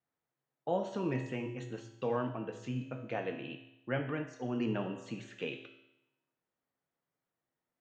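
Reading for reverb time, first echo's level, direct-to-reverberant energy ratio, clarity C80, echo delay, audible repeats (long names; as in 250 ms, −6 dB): 0.85 s, no echo audible, 3.5 dB, 10.0 dB, no echo audible, no echo audible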